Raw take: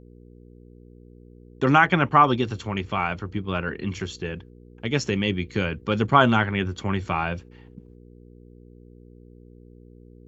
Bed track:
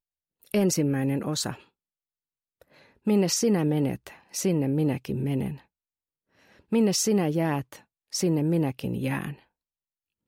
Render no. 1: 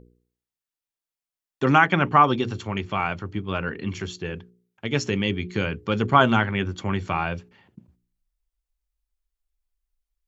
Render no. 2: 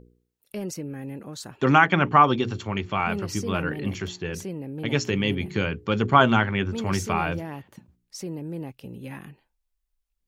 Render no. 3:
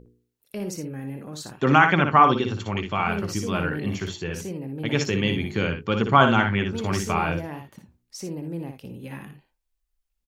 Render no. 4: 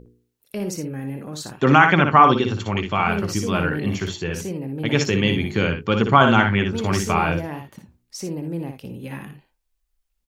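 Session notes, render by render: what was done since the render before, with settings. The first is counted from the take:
hum removal 60 Hz, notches 8
mix in bed track −9.5 dB
ambience of single reflections 59 ms −6.5 dB, 79 ms −17 dB
level +4 dB; brickwall limiter −1 dBFS, peak gain reduction 3 dB

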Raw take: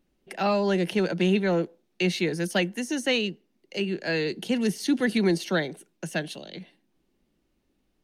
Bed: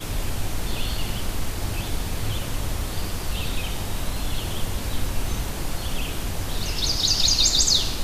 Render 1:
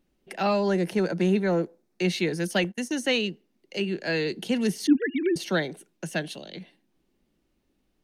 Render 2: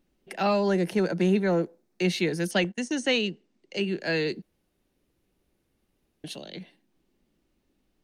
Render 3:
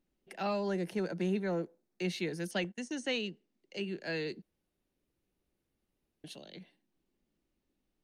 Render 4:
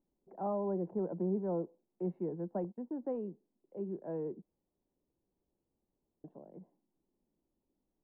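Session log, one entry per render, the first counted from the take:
0:00.68–0:02.05: parametric band 3,100 Hz −9 dB 0.71 octaves; 0:02.64–0:03.04: noise gate −38 dBFS, range −22 dB; 0:04.87–0:05.36: three sine waves on the formant tracks
0:02.51–0:03.82: Butterworth low-pass 9,000 Hz 48 dB per octave; 0:04.42–0:06.24: fill with room tone
level −9.5 dB
Chebyshev low-pass filter 1,000 Hz, order 4; low-shelf EQ 140 Hz −4 dB

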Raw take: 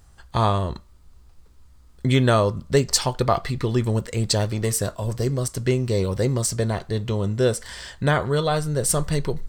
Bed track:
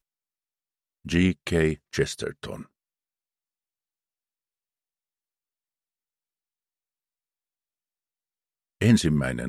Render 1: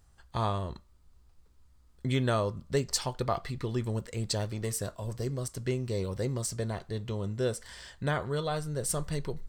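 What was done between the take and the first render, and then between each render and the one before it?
level −10 dB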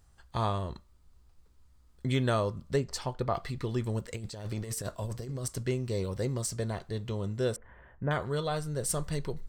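0:02.76–0:03.35: high-shelf EQ 2,900 Hz −10 dB
0:04.09–0:05.63: compressor whose output falls as the input rises −35 dBFS, ratio −0.5
0:07.56–0:08.11: Gaussian smoothing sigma 5.4 samples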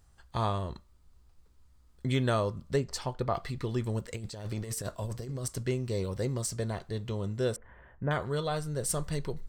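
no processing that can be heard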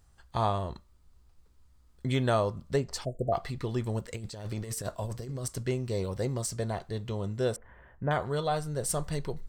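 0:03.05–0:03.33: time-frequency box erased 730–6,800 Hz
dynamic equaliser 750 Hz, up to +6 dB, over −47 dBFS, Q 2.3

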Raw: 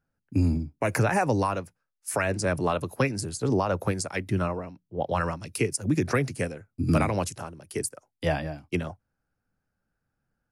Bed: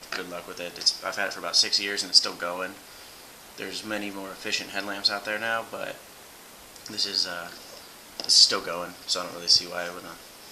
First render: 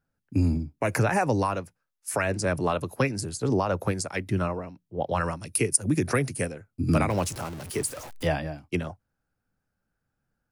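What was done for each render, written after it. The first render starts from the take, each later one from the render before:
0:05.24–0:06.46: parametric band 9,700 Hz +11.5 dB 0.36 octaves
0:07.10–0:08.27: converter with a step at zero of −35 dBFS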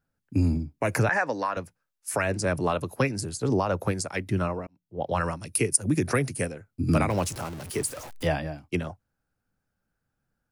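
0:01.09–0:01.57: loudspeaker in its box 350–6,400 Hz, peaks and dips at 380 Hz −8 dB, 780 Hz −4 dB, 1,700 Hz +8 dB, 2,700 Hz −5 dB, 5,900 Hz −4 dB
0:04.67–0:05.09: fade in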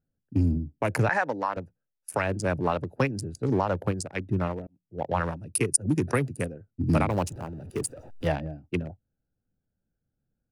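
adaptive Wiener filter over 41 samples
dynamic equaliser 880 Hz, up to +4 dB, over −45 dBFS, Q 5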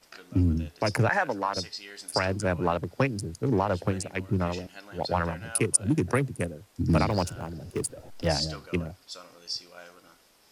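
mix in bed −15 dB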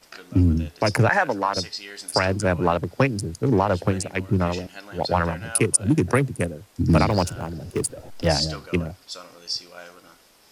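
level +5.5 dB
brickwall limiter −3 dBFS, peak gain reduction 3 dB

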